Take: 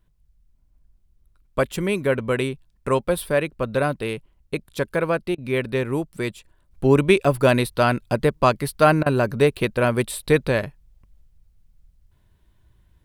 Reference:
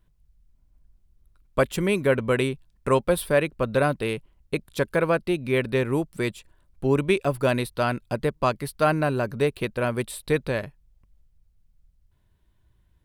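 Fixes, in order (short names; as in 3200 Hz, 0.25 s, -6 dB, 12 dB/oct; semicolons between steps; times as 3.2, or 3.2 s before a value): interpolate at 5.35/9.03, 30 ms; gain correction -5.5 dB, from 6.71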